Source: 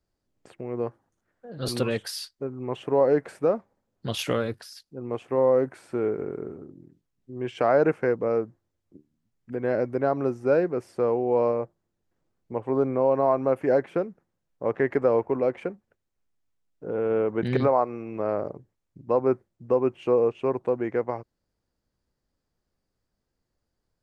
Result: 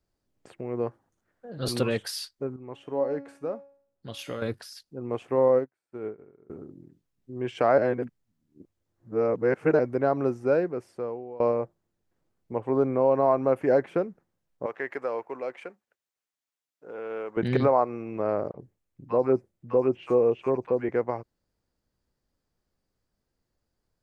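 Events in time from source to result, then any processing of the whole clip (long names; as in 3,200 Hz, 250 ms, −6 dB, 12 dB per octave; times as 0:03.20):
0:02.56–0:04.42: tuned comb filter 280 Hz, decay 0.55 s, mix 70%
0:05.48–0:06.50: expander for the loud parts 2.5 to 1, over −43 dBFS
0:07.78–0:09.79: reverse
0:10.32–0:11.40: fade out, to −22 dB
0:14.66–0:17.37: high-pass filter 1,400 Hz 6 dB per octave
0:18.51–0:20.89: three-band delay without the direct sound mids, lows, highs 30/80 ms, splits 1,000/4,900 Hz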